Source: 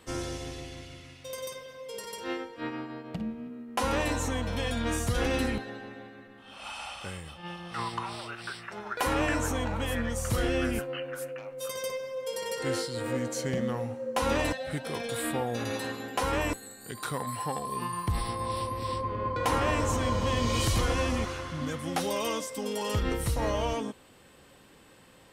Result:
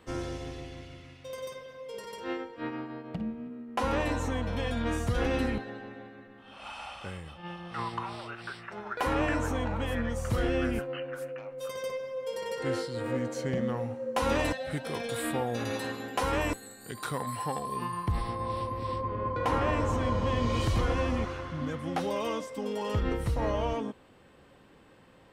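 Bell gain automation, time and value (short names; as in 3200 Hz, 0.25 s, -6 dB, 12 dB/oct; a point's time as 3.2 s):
bell 12000 Hz 2.3 oct
13.51 s -11 dB
14.3 s -3 dB
17.55 s -3 dB
18.3 s -14.5 dB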